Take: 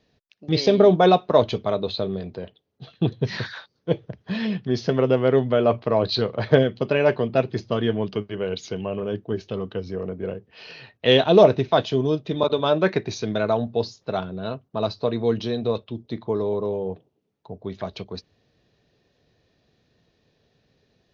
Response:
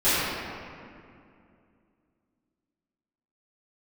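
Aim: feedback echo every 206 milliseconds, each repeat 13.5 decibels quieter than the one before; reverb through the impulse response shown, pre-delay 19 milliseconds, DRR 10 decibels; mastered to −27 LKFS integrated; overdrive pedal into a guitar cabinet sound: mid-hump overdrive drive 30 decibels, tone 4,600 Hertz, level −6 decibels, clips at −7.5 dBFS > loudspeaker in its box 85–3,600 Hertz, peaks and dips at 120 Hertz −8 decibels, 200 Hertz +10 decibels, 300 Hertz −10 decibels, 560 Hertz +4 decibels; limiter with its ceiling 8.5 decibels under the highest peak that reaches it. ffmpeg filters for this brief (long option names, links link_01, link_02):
-filter_complex "[0:a]alimiter=limit=-10.5dB:level=0:latency=1,aecho=1:1:206|412:0.211|0.0444,asplit=2[link_01][link_02];[1:a]atrim=start_sample=2205,adelay=19[link_03];[link_02][link_03]afir=irnorm=-1:irlink=0,volume=-29dB[link_04];[link_01][link_04]amix=inputs=2:normalize=0,asplit=2[link_05][link_06];[link_06]highpass=frequency=720:poles=1,volume=30dB,asoftclip=type=tanh:threshold=-7.5dB[link_07];[link_05][link_07]amix=inputs=2:normalize=0,lowpass=frequency=4600:poles=1,volume=-6dB,highpass=85,equalizer=frequency=120:width_type=q:width=4:gain=-8,equalizer=frequency=200:width_type=q:width=4:gain=10,equalizer=frequency=300:width_type=q:width=4:gain=-10,equalizer=frequency=560:width_type=q:width=4:gain=4,lowpass=frequency=3600:width=0.5412,lowpass=frequency=3600:width=1.3066,volume=-11.5dB"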